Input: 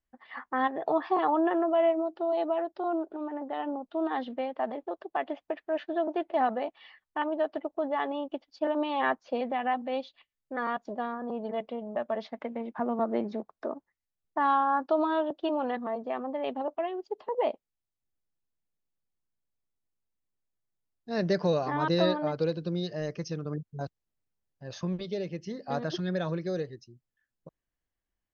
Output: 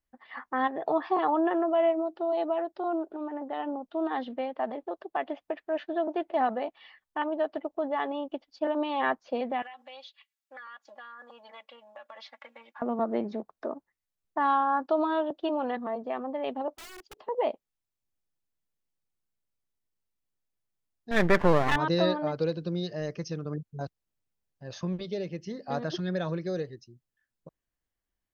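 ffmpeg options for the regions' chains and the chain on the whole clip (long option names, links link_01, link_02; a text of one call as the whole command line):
ffmpeg -i in.wav -filter_complex "[0:a]asettb=1/sr,asplit=3[link_01][link_02][link_03];[link_01]atrim=end=9.624[link_04];[link_02]atrim=start=9.62:end=12.82,asetpts=PTS-STARTPTS,afade=type=in:duration=0.004:curve=qsin,afade=type=out:start_time=3.196:duration=0.004:curve=qsin,highpass=1300,aecho=1:1:3.6:0.84,atrim=end_sample=141120,acompressor=threshold=-41dB:ratio=10:attack=3.2:release=140:knee=1:detection=peak[link_05];[link_03]atrim=start=12.816[link_06];[link_04][link_05]acrossfade=duration=0.004:curve1=hsin:curve2=qsin[link_07];[link_07][link_06]acrossfade=duration=0.004:curve1=qsin:curve2=hsin,asettb=1/sr,asplit=3[link_08][link_09][link_10];[link_08]atrim=end=16.764[link_11];[link_09]atrim=start=16.76:end=17.17,asetpts=PTS-STARTPTS,afade=type=in:duration=0.004:curve=qsin,afade=type=out:start_time=0.406:duration=0.004:curve=qsin,equalizer=frequency=480:width_type=o:width=2.3:gain=-12.5,aeval=exprs='(mod(106*val(0)+1,2)-1)/106':channel_layout=same[link_12];[link_10]atrim=start=17.166[link_13];[link_11][link_12]acrossfade=duration=0.004:curve1=hsin:curve2=qsin[link_14];[link_14][link_13]acrossfade=duration=0.004:curve1=qsin:curve2=hsin,asettb=1/sr,asplit=3[link_15][link_16][link_17];[link_15]atrim=end=21.114[link_18];[link_16]atrim=start=21.11:end=21.76,asetpts=PTS-STARTPTS,afade=type=in:duration=0.004:curve=qsin,afade=type=out:start_time=0.646:duration=0.004:curve=qsin,acontrast=84,lowpass=frequency=1800:width_type=q:width=3.2,aeval=exprs='max(val(0),0)':channel_layout=same[link_19];[link_17]atrim=start=21.756[link_20];[link_18][link_19]acrossfade=duration=0.004:curve1=hsin:curve2=qsin[link_21];[link_21][link_20]acrossfade=duration=0.004:curve1=qsin:curve2=hsin" out.wav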